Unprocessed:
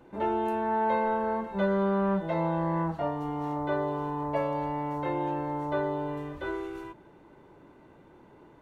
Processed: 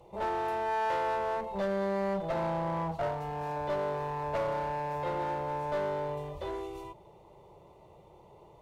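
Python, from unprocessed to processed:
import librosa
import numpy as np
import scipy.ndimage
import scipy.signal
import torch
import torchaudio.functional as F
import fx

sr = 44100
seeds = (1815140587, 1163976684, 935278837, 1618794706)

y = fx.cheby_harmonics(x, sr, harmonics=(5,), levels_db=(-20,), full_scale_db=-16.0)
y = fx.fixed_phaser(y, sr, hz=650.0, stages=4)
y = fx.clip_asym(y, sr, top_db=-33.0, bottom_db=-23.0)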